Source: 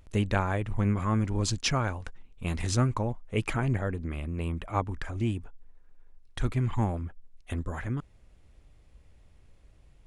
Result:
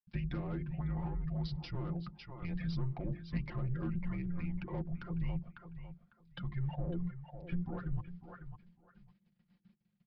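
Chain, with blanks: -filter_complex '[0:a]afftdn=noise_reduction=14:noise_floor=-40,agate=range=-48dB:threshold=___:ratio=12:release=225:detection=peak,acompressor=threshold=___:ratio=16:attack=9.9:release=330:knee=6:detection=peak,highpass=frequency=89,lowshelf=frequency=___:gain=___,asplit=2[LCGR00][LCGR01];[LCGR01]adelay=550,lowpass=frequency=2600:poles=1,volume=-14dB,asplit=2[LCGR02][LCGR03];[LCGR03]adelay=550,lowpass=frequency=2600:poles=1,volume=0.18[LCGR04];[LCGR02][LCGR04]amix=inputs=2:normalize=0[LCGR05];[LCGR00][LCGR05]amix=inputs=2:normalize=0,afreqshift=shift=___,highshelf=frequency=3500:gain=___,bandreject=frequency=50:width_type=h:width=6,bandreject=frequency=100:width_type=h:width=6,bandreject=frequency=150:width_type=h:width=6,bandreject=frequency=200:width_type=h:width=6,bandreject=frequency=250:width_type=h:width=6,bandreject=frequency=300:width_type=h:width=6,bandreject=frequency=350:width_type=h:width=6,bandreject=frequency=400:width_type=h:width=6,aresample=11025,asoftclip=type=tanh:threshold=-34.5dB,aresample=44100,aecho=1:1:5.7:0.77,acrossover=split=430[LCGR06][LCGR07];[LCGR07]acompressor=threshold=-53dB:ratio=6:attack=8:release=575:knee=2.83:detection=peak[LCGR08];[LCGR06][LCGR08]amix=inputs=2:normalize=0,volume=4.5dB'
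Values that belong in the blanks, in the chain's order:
-55dB, -31dB, 140, -6.5, -260, 4.5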